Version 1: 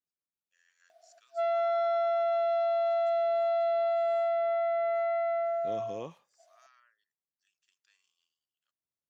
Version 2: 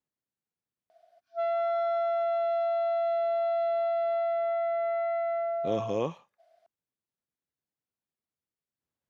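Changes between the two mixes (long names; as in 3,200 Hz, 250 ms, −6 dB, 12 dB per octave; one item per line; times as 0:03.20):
first voice: muted
second voice +10.5 dB
master: add high-shelf EQ 4,600 Hz −7 dB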